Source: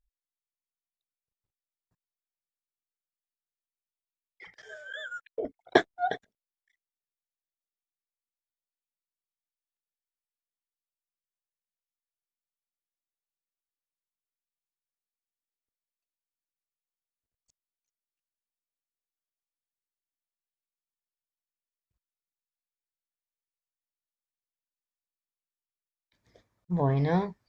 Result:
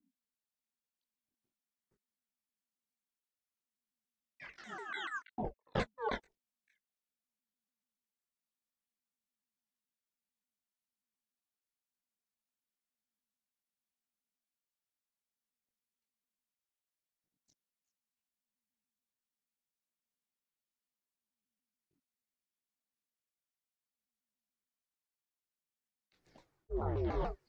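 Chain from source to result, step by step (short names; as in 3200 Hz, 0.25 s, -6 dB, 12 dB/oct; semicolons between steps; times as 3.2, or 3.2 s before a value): ring modulator 230 Hz; chorus voices 4, 0.18 Hz, delay 22 ms, depth 3.2 ms; reverse; compressor 4:1, threshold -38 dBFS, peak gain reduction 16 dB; reverse; shaped vibrato saw down 6.9 Hz, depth 250 cents; gain +4.5 dB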